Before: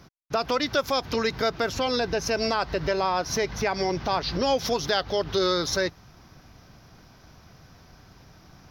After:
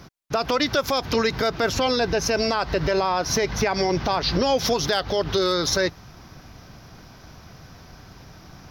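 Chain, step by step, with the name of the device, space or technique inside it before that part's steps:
clipper into limiter (hard clipping −14 dBFS, distortion −38 dB; brickwall limiter −19 dBFS, peak gain reduction 5 dB)
level +6.5 dB

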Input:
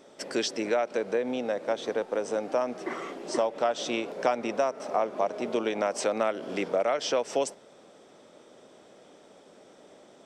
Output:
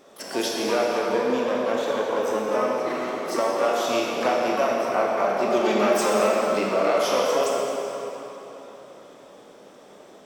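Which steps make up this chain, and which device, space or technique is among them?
0:05.24–0:06.16: comb filter 5.2 ms, depth 96%
shimmer-style reverb (pitch-shifted copies added +12 semitones −9 dB; convolution reverb RT60 3.7 s, pre-delay 19 ms, DRR −3.5 dB)

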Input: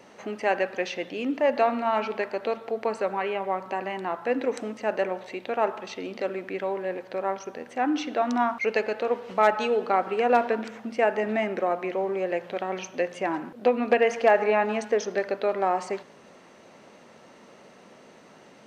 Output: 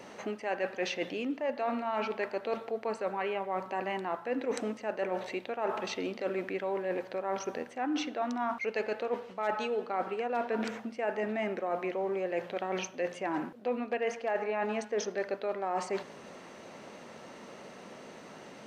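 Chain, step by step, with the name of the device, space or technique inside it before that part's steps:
compression on the reversed sound (reversed playback; downward compressor 6 to 1, threshold −33 dBFS, peak gain reduction 17.5 dB; reversed playback)
level +3 dB

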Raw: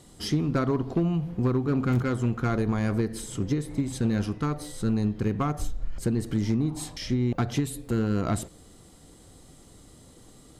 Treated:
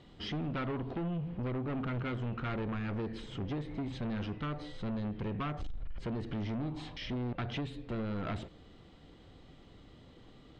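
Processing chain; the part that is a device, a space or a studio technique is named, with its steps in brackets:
overdriven synthesiser ladder filter (soft clipping −29 dBFS, distortion −7 dB; transistor ladder low-pass 3,800 Hz, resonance 35%)
level +4 dB

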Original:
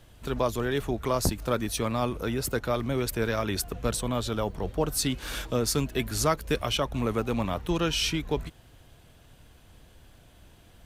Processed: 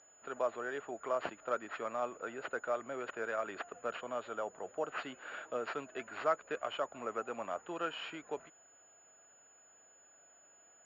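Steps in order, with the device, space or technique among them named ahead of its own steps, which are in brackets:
toy sound module (linearly interpolated sample-rate reduction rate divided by 4×; switching amplifier with a slow clock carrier 6,900 Hz; loudspeaker in its box 540–4,000 Hz, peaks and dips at 640 Hz +4 dB, 960 Hz −4 dB, 1,400 Hz +5 dB, 2,200 Hz −5 dB, 3,600 Hz −7 dB)
level −6.5 dB

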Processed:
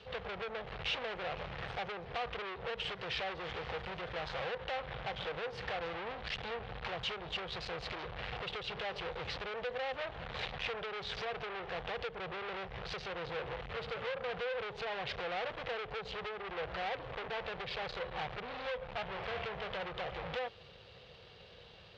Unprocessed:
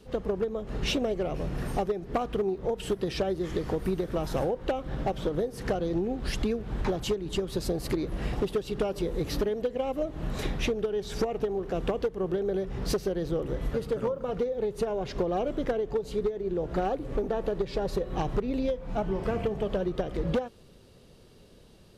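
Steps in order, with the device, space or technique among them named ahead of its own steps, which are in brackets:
scooped metal amplifier (tube saturation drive 41 dB, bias 0.5; loudspeaker in its box 97–3,600 Hz, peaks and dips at 340 Hz +5 dB, 490 Hz +9 dB, 750 Hz +5 dB; guitar amp tone stack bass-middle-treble 10-0-10)
level +14 dB

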